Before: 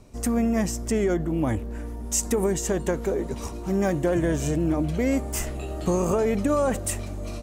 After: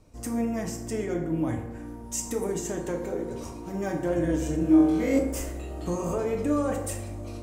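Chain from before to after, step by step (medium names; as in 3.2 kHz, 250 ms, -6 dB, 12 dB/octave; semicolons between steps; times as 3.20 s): 4.57–5.19 s: flutter echo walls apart 3.8 m, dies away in 0.78 s; on a send at -1 dB: reverberation RT60 1.0 s, pre-delay 3 ms; on the sum: trim -8 dB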